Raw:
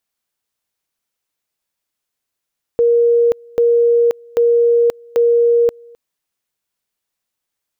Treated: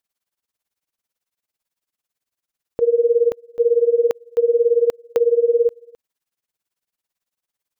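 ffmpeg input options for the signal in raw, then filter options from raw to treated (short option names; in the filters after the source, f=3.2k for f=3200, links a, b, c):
-f lavfi -i "aevalsrc='pow(10,(-9-28.5*gte(mod(t,0.79),0.53))/20)*sin(2*PI*471*t)':d=3.16:s=44100"
-af "tremolo=f=18:d=0.88"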